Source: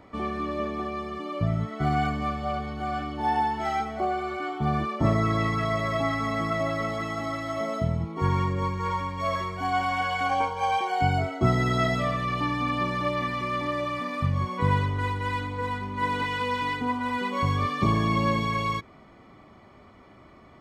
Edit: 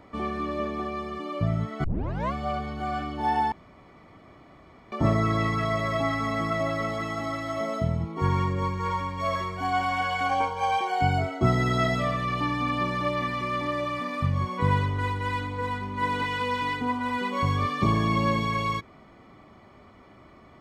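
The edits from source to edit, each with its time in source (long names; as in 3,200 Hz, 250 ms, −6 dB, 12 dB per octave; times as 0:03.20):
0:01.84: tape start 0.49 s
0:03.52–0:04.92: fill with room tone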